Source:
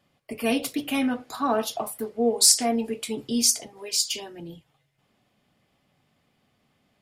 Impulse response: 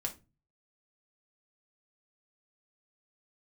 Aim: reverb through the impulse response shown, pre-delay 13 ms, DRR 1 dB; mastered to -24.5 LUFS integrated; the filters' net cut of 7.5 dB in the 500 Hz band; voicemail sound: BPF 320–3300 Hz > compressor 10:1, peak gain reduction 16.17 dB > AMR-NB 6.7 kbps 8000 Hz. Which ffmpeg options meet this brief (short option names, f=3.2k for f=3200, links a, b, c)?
-filter_complex "[0:a]equalizer=f=500:t=o:g=-8.5,asplit=2[a][b];[1:a]atrim=start_sample=2205,adelay=13[c];[b][c]afir=irnorm=-1:irlink=0,volume=-2dB[d];[a][d]amix=inputs=2:normalize=0,highpass=320,lowpass=3.3k,acompressor=threshold=-36dB:ratio=10,volume=18.5dB" -ar 8000 -c:a libopencore_amrnb -b:a 6700